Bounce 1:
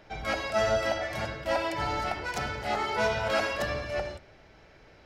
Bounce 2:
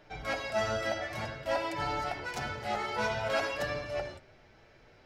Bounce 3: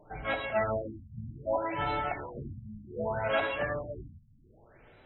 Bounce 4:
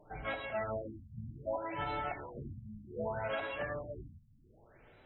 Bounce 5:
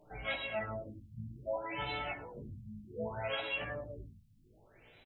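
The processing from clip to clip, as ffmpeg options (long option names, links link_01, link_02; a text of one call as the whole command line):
ffmpeg -i in.wav -af "flanger=delay=6.8:depth=1.8:regen=-37:speed=0.54:shape=sinusoidal" out.wav
ffmpeg -i in.wav -af "afftfilt=real='re*lt(b*sr/1024,230*pow(4100/230,0.5+0.5*sin(2*PI*0.65*pts/sr)))':imag='im*lt(b*sr/1024,230*pow(4100/230,0.5+0.5*sin(2*PI*0.65*pts/sr)))':win_size=1024:overlap=0.75,volume=2dB" out.wav
ffmpeg -i in.wav -af "alimiter=limit=-23.5dB:level=0:latency=1:release=379,volume=-3.5dB" out.wav
ffmpeg -i in.wav -af "highshelf=frequency=2000:width_type=q:width=1.5:gain=7.5,flanger=delay=16:depth=3.4:speed=0.57,aecho=1:1:103:0.0668,volume=1.5dB" out.wav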